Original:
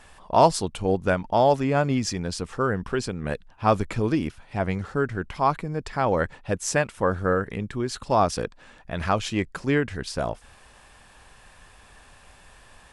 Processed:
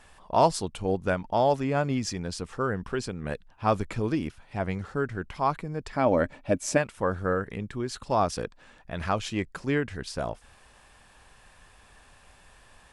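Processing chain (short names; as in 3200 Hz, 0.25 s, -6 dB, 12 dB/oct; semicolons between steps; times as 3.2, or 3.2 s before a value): 5.95–6.76 small resonant body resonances 270/600/2300 Hz, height 10 dB -> 14 dB; gain -4 dB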